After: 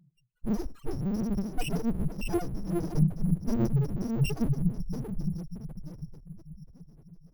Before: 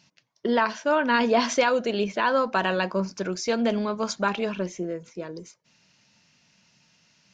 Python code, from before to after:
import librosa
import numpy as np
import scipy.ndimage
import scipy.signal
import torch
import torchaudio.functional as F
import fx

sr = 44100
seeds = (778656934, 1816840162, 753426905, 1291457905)

y = fx.bit_reversed(x, sr, seeds[0], block=128)
y = fx.peak_eq(y, sr, hz=1200.0, db=-7.0, octaves=0.44)
y = y + 0.81 * np.pad(y, (int(6.1 * sr / 1000.0), 0))[:len(y)]
y = fx.dynamic_eq(y, sr, hz=910.0, q=2.8, threshold_db=-53.0, ratio=4.0, max_db=-5)
y = fx.rider(y, sr, range_db=5, speed_s=0.5)
y = fx.echo_diffused(y, sr, ms=562, feedback_pct=49, wet_db=-6.0)
y = fx.spec_topn(y, sr, count=2)
y = fx.running_max(y, sr, window=9)
y = y * 10.0 ** (8.5 / 20.0)